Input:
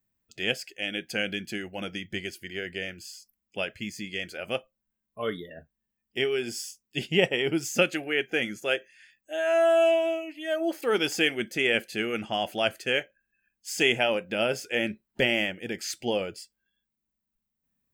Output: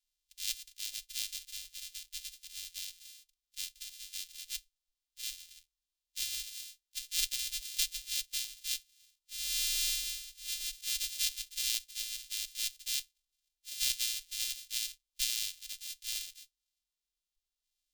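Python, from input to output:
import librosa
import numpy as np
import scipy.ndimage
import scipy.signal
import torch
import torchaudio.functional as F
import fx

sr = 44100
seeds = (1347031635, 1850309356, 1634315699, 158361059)

y = np.r_[np.sort(x[:len(x) // 128 * 128].reshape(-1, 128), axis=1).ravel(), x[len(x) // 128 * 128:]]
y = scipy.signal.sosfilt(scipy.signal.cheby2(4, 80, [160.0, 700.0], 'bandstop', fs=sr, output='sos'), y)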